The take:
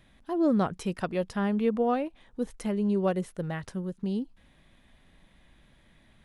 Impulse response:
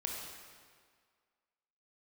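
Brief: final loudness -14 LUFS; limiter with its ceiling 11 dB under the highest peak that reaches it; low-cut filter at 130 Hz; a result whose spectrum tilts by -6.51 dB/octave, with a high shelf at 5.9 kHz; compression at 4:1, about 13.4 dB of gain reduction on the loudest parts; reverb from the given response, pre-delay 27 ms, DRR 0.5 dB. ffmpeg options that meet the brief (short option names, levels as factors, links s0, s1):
-filter_complex "[0:a]highpass=130,highshelf=f=5900:g=-5.5,acompressor=threshold=0.0126:ratio=4,alimiter=level_in=4.22:limit=0.0631:level=0:latency=1,volume=0.237,asplit=2[s0][s1];[1:a]atrim=start_sample=2205,adelay=27[s2];[s1][s2]afir=irnorm=-1:irlink=0,volume=0.794[s3];[s0][s3]amix=inputs=2:normalize=0,volume=26.6"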